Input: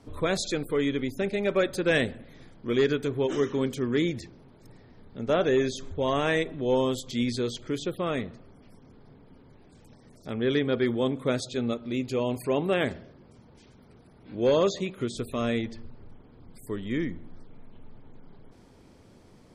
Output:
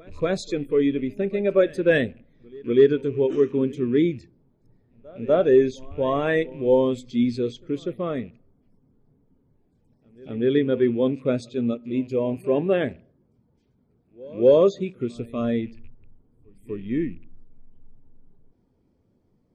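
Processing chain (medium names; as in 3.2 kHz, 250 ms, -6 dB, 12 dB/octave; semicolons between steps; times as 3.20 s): rattle on loud lows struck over -43 dBFS, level -35 dBFS; pre-echo 245 ms -17 dB; spectral contrast expander 1.5:1; trim +7 dB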